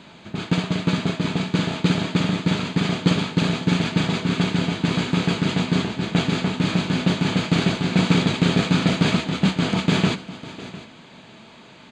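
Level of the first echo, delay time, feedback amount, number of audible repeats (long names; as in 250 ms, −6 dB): −17.5 dB, 552 ms, repeats not evenly spaced, 2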